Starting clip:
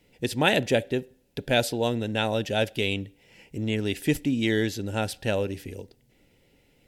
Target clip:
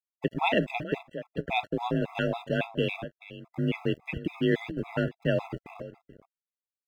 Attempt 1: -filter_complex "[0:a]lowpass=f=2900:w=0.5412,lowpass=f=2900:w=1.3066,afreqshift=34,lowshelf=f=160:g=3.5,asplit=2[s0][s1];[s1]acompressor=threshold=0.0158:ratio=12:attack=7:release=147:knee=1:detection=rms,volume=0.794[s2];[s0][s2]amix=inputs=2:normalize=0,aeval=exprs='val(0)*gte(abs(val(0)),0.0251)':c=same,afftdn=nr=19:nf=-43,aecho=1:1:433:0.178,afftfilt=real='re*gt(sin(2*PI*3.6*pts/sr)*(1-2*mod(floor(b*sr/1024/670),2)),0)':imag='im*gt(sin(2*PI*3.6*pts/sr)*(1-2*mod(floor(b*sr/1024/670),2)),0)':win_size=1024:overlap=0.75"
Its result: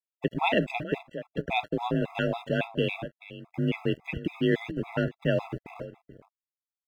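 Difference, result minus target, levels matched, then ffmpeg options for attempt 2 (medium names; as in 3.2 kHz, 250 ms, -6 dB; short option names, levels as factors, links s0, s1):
compression: peak gain reduction -7.5 dB
-filter_complex "[0:a]lowpass=f=2900:w=0.5412,lowpass=f=2900:w=1.3066,afreqshift=34,lowshelf=f=160:g=3.5,asplit=2[s0][s1];[s1]acompressor=threshold=0.00631:ratio=12:attack=7:release=147:knee=1:detection=rms,volume=0.794[s2];[s0][s2]amix=inputs=2:normalize=0,aeval=exprs='val(0)*gte(abs(val(0)),0.0251)':c=same,afftdn=nr=19:nf=-43,aecho=1:1:433:0.178,afftfilt=real='re*gt(sin(2*PI*3.6*pts/sr)*(1-2*mod(floor(b*sr/1024/670),2)),0)':imag='im*gt(sin(2*PI*3.6*pts/sr)*(1-2*mod(floor(b*sr/1024/670),2)),0)':win_size=1024:overlap=0.75"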